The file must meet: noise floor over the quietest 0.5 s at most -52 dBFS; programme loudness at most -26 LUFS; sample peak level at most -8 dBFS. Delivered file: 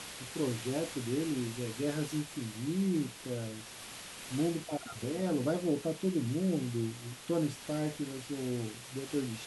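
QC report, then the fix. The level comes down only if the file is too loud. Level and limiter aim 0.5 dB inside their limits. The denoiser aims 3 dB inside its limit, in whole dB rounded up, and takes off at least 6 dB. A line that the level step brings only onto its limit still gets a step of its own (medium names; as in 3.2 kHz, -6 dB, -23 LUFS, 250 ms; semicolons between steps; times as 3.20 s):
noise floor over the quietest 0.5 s -47 dBFS: fail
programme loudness -35.5 LUFS: pass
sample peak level -20.0 dBFS: pass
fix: noise reduction 8 dB, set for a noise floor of -47 dBFS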